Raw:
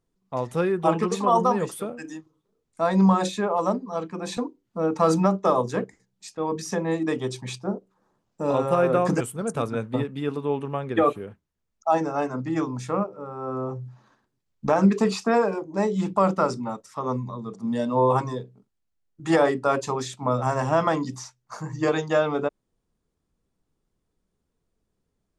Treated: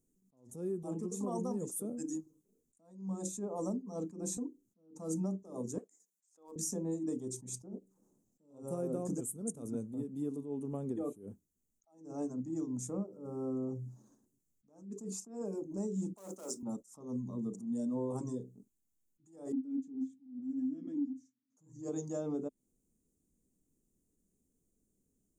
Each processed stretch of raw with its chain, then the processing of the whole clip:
5.78–6.56 HPF 840 Hz + overloaded stage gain 24.5 dB
16.14–16.63 overloaded stage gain 21 dB + HPF 550 Hz + modulation noise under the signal 35 dB
19.52–21.57 vowel filter i + small resonant body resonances 260/1700 Hz, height 15 dB, ringing for 65 ms
whole clip: EQ curve 130 Hz 0 dB, 260 Hz +9 dB, 1800 Hz -21 dB, 2800 Hz -19 dB, 4600 Hz -10 dB, 6700 Hz +12 dB; compressor 5:1, threshold -29 dBFS; attack slew limiter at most 120 dB/s; gain -5 dB

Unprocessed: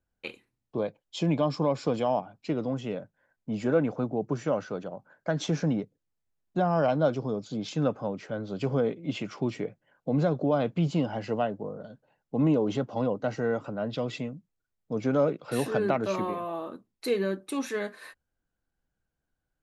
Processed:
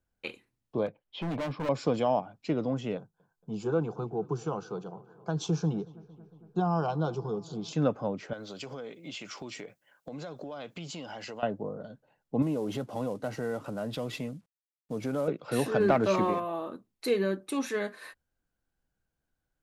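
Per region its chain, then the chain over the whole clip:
0.86–1.69 LPF 3200 Hz 24 dB/oct + overloaded stage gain 30.5 dB
2.97–7.73 fixed phaser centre 390 Hz, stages 8 + darkening echo 0.228 s, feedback 74%, low-pass 3300 Hz, level -22 dB
8.33–11.43 tilt +3.5 dB/oct + compressor, threshold -37 dBFS
12.42–15.28 CVSD 64 kbps + compressor 2:1, threshold -32 dBFS
15.8–16.4 Bessel low-pass 8500 Hz + sample leveller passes 1
whole clip: dry

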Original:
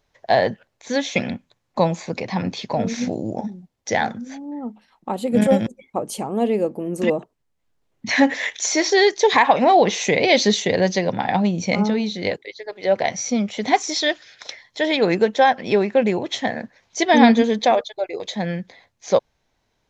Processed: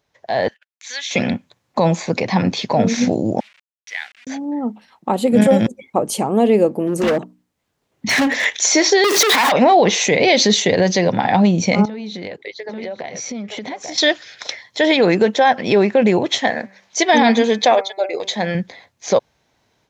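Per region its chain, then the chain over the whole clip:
0.48–1.11 Chebyshev high-pass 2100 Hz + gate -59 dBFS, range -29 dB + compressor 1.5:1, threshold -37 dBFS
3.4–4.27 level-crossing sampler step -31 dBFS + ladder band-pass 2700 Hz, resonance 45%
6.87–8.45 notches 60/120/180/240/300 Hz + hard clip -21 dBFS
9.04–9.52 zero-crossing step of -17 dBFS + steep high-pass 170 Hz 96 dB/oct + core saturation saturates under 2600 Hz
11.85–13.98 tone controls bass -1 dB, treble -6 dB + echo 0.84 s -11 dB + compressor 16:1, threshold -32 dBFS
16.38–18.55 low shelf 240 Hz -11.5 dB + de-hum 194 Hz, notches 13
whole clip: HPF 77 Hz; limiter -11.5 dBFS; AGC gain up to 8 dB

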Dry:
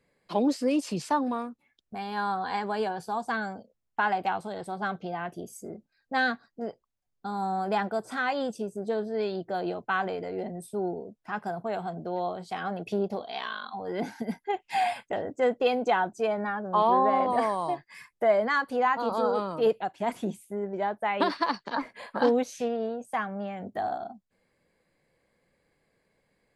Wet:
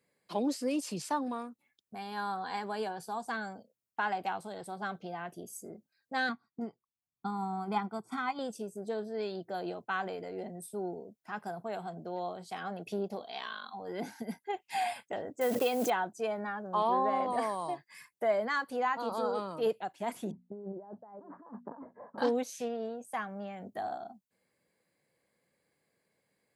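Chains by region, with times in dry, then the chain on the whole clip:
6.29–8.39 high shelf 2100 Hz -10 dB + comb 0.9 ms, depth 81% + transient shaper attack +6 dB, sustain -6 dB
15.41–15.92 block floating point 5-bit + backwards sustainer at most 25 dB/s
20.31–22.18 notches 60/120/180/240 Hz + negative-ratio compressor -37 dBFS + Gaussian blur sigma 9 samples
whole clip: HPF 100 Hz; high shelf 6900 Hz +11.5 dB; gain -6.5 dB

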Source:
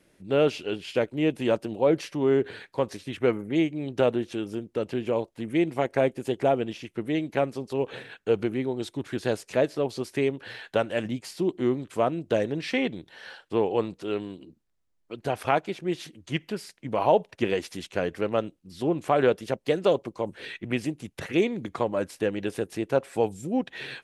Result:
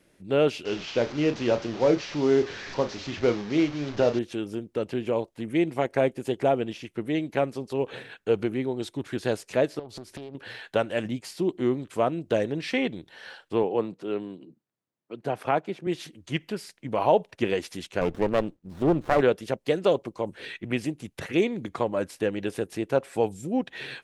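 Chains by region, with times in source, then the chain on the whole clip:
0.65–4.19 delta modulation 32 kbps, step -33 dBFS + doubler 34 ms -9.5 dB
9.79–10.35 low shelf 210 Hz +8.5 dB + compressor 16:1, threshold -35 dBFS + Doppler distortion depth 0.57 ms
13.63–15.87 HPF 120 Hz 24 dB/oct + high shelf 2200 Hz -8.5 dB
18.01–19.21 low shelf 450 Hz +7 dB + running maximum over 17 samples
whole clip: dry

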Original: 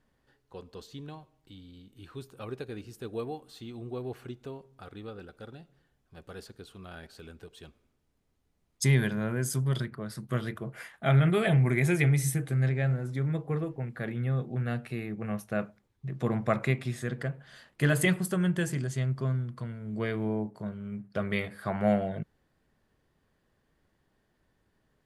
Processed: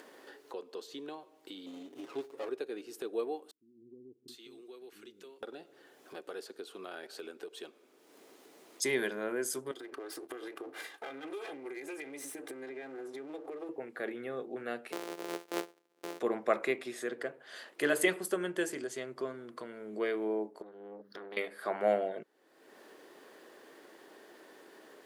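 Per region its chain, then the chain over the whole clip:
1.66–2.49 comb 7.2 ms, depth 92% + running maximum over 17 samples
3.51–5.43 passive tone stack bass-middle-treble 6-0-2 + bands offset in time lows, highs 0.77 s, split 300 Hz
9.71–13.69 minimum comb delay 2.5 ms + compressor 10:1, threshold -40 dBFS
14.92–16.2 sample sorter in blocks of 256 samples + AM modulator 250 Hz, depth 45%
20.62–21.37 compressor 2:1, threshold -51 dBFS + fixed phaser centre 2400 Hz, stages 6 + core saturation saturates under 700 Hz
whole clip: Chebyshev high-pass 330 Hz, order 3; bell 420 Hz +4 dB 1.5 oct; upward compressor, threshold -35 dBFS; gain -2 dB

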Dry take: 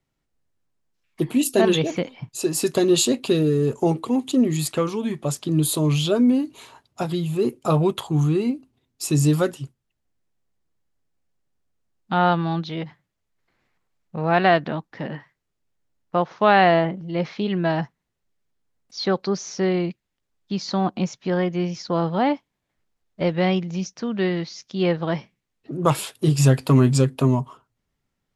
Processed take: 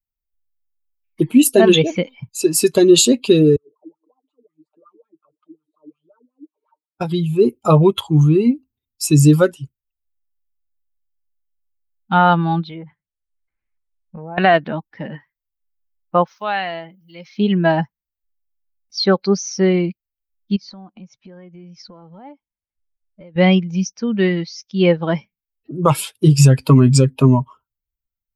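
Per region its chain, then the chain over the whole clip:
3.56–7.01 compressor 4:1, threshold -35 dBFS + wah 5.5 Hz 300–1300 Hz, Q 9.9 + comb 6.6 ms, depth 63%
12.63–14.38 treble ducked by the level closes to 870 Hz, closed at -22 dBFS + LPF 3900 Hz + compressor 4:1, threshold -29 dBFS
16.27–17.38 pre-emphasis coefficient 0.8 + mismatched tape noise reduction encoder only
20.56–23.36 LPF 2700 Hz 6 dB/oct + compressor 5:1, threshold -37 dBFS
whole clip: per-bin expansion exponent 1.5; maximiser +11.5 dB; gain -1 dB

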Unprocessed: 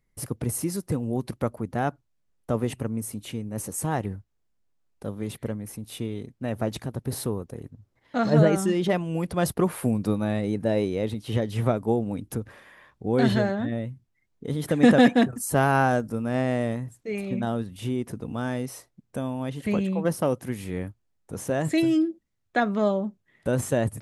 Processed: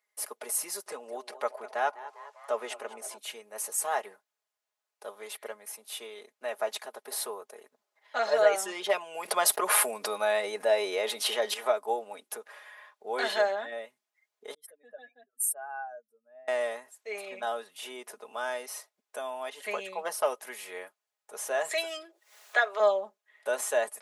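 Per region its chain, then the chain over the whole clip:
0.86–3.18 LPF 7900 Hz + upward compressor, threshold -35 dBFS + frequency-shifting echo 0.201 s, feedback 58%, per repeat +140 Hz, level -17.5 dB
9.25–11.54 expander -40 dBFS + fast leveller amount 70%
14.54–16.48 spectral contrast raised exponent 2.2 + pre-emphasis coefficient 0.97
21.71–22.8 HPF 360 Hz 24 dB/oct + upward compressor, threshold -30 dBFS
whole clip: HPF 580 Hz 24 dB/oct; comb 4.8 ms

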